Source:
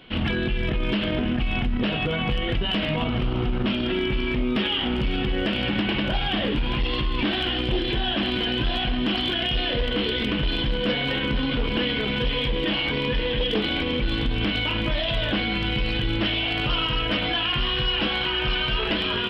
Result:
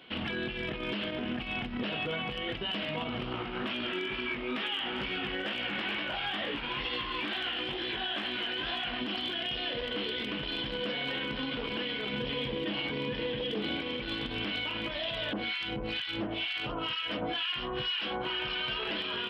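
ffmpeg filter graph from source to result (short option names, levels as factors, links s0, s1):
-filter_complex "[0:a]asettb=1/sr,asplit=3[s0][s1][s2];[s0]atrim=end=3.324[s3];[s1]atrim=start=3.32:end=9.01,asetpts=PTS-STARTPTS,afade=t=in:d=0.004:c=qsin,afade=t=out:st=5.686:d=0.004:c=qsin,equalizer=f=1600:t=o:w=2.5:g=8,flanger=delay=16.5:depth=5.6:speed=2.2,asoftclip=type=hard:threshold=0.188[s4];[s2]atrim=start=9.006[s5];[s3][s4]acrossfade=d=0.004:c1=hsin:c2=qsin[s6];[s6][s5]acrossfade=d=0.004:c1=qsin:c2=hsin,asettb=1/sr,asplit=3[s7][s8][s9];[s7]atrim=end=12.124[s10];[s8]atrim=start=12.12:end=13.81,asetpts=PTS-STARTPTS,afade=t=in:d=0.004:c=qsin,afade=t=out:st=1.686:d=0.004:c=qsin,highpass=66,lowshelf=f=450:g=9.5[s11];[s9]atrim=start=13.806[s12];[s10][s11]acrossfade=d=0.004:c1=hsin:c2=qsin[s13];[s13][s12]acrossfade=d=0.004:c1=qsin:c2=hsin,asettb=1/sr,asplit=3[s14][s15][s16];[s14]atrim=end=15.334[s17];[s15]atrim=start=15.33:end=18.3,asetpts=PTS-STARTPTS,afade=t=in:d=0.004:c=qsin,afade=t=out:st=2.966:d=0.004:c=qsin,acontrast=35,acrossover=split=1100[s18][s19];[s18]aeval=exprs='val(0)*(1-1/2+1/2*cos(2*PI*2.1*n/s))':c=same[s20];[s19]aeval=exprs='val(0)*(1-1/2-1/2*cos(2*PI*2.1*n/s))':c=same[s21];[s20][s21]amix=inputs=2:normalize=0[s22];[s16]atrim=start=18.296[s23];[s17][s22]acrossfade=d=0.004:c1=hsin:c2=qsin[s24];[s24][s23]acrossfade=d=0.004:c1=qsin:c2=hsin,highpass=f=320:p=1,alimiter=limit=0.0841:level=0:latency=1:release=132,volume=0.668"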